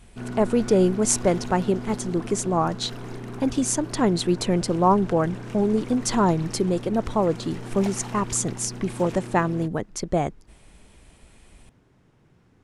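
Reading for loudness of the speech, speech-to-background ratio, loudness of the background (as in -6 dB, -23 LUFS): -24.0 LUFS, 12.5 dB, -36.5 LUFS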